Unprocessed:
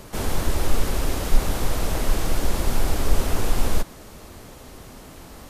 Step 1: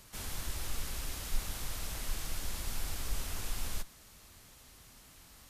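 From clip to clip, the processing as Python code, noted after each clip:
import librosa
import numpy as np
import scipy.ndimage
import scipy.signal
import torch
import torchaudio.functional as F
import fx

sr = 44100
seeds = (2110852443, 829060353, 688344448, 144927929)

y = fx.tone_stack(x, sr, knobs='5-5-5')
y = F.gain(torch.from_numpy(y), -2.0).numpy()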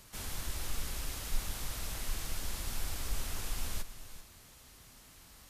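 y = x + 10.0 ** (-13.0 / 20.0) * np.pad(x, (int(388 * sr / 1000.0), 0))[:len(x)]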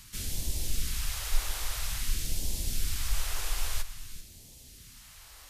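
y = fx.phaser_stages(x, sr, stages=2, low_hz=170.0, high_hz=1300.0, hz=0.5, feedback_pct=25)
y = F.gain(torch.from_numpy(y), 5.5).numpy()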